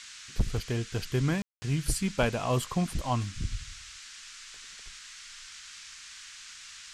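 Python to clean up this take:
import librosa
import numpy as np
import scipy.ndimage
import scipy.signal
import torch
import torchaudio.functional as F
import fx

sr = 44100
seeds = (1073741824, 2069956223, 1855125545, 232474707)

y = fx.fix_declip(x, sr, threshold_db=-16.0)
y = fx.fix_ambience(y, sr, seeds[0], print_start_s=6.42, print_end_s=6.92, start_s=1.42, end_s=1.62)
y = fx.noise_reduce(y, sr, print_start_s=6.42, print_end_s=6.92, reduce_db=28.0)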